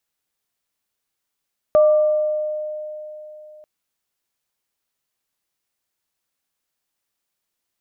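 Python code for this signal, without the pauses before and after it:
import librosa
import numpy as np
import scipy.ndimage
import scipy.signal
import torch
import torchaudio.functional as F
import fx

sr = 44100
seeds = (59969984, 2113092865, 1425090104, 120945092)

y = fx.additive_free(sr, length_s=1.89, hz=610.0, level_db=-9.0, upper_db=(-15,), decay_s=3.45, upper_decays_s=(1.16,), upper_hz=(1180.0,))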